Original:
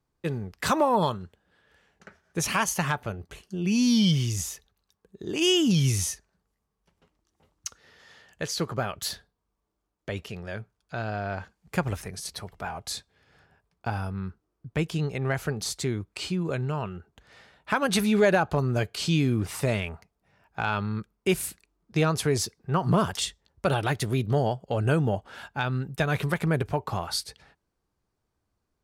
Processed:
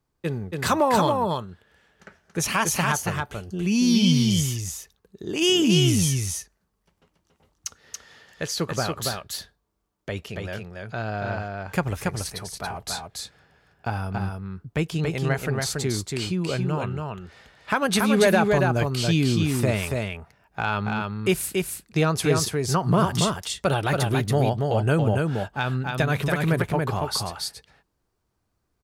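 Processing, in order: treble shelf 12 kHz +3 dB; on a send: delay 281 ms -3.5 dB; on the sum: trim +2 dB

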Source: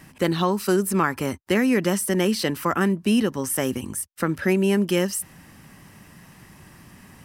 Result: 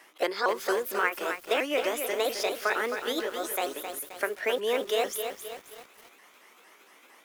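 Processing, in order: sawtooth pitch modulation +5.5 st, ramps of 229 ms; high-pass 430 Hz 24 dB/octave; treble shelf 6.4 kHz -6 dB; bit-crushed delay 264 ms, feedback 55%, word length 7-bit, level -7 dB; trim -2 dB

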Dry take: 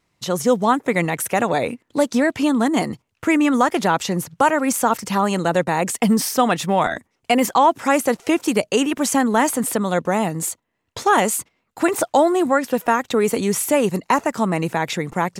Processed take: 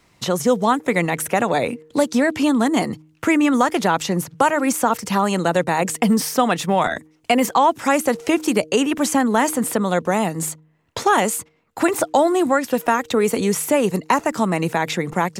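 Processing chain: de-hum 155.6 Hz, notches 3; three bands compressed up and down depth 40%

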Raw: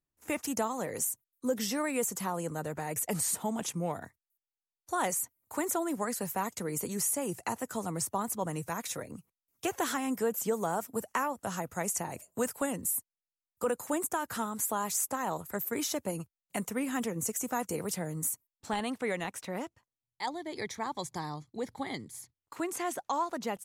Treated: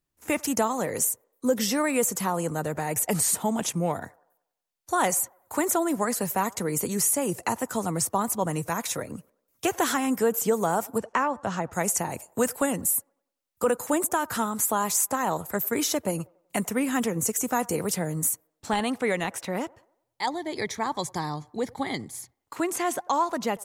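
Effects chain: 10.98–11.73 s: distance through air 110 m; on a send: feedback echo behind a band-pass 94 ms, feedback 44%, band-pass 770 Hz, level -23 dB; on the sum: trim +7 dB

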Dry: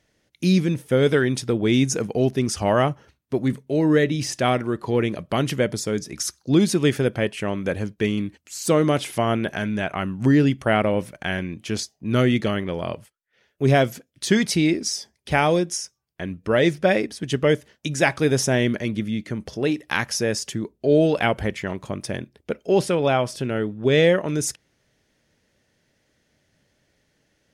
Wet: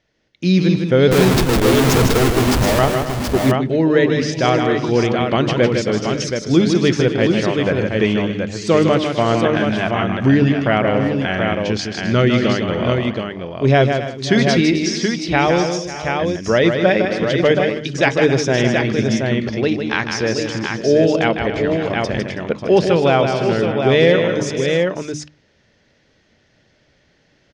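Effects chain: low-pass 5.6 kHz 24 dB/octave; hum notches 50/100/150/200/250/300 Hz; 1.11–2.79 s: Schmitt trigger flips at -29.5 dBFS; multi-tap echo 155/262/325/545/613/726 ms -6/-13/-19.5/-15.5/-17.5/-5.5 dB; level rider gain up to 7.5 dB

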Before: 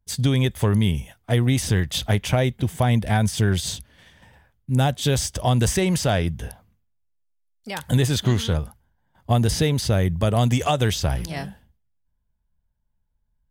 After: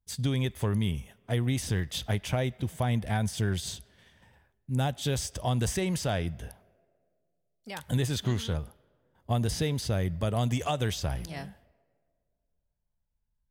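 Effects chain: on a send: frequency weighting A + reverberation RT60 2.1 s, pre-delay 5 ms, DRR 21.5 dB; on the sum: trim -8.5 dB

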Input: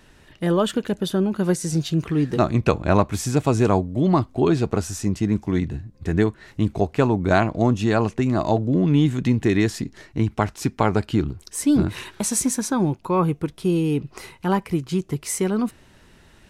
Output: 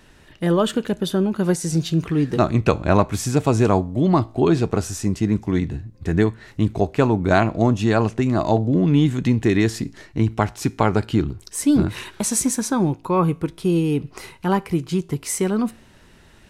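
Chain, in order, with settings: feedback comb 56 Hz, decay 0.4 s, harmonics all, mix 30%; trim +3.5 dB

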